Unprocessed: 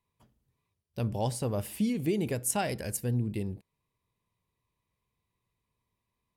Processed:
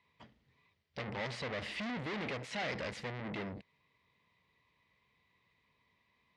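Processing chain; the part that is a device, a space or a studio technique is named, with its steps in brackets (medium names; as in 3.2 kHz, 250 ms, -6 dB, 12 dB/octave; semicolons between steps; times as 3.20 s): guitar amplifier (valve stage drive 47 dB, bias 0.5; tone controls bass -3 dB, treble +13 dB; cabinet simulation 78–3700 Hz, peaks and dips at 110 Hz -6 dB, 360 Hz -4 dB, 2 kHz +10 dB); trim +10.5 dB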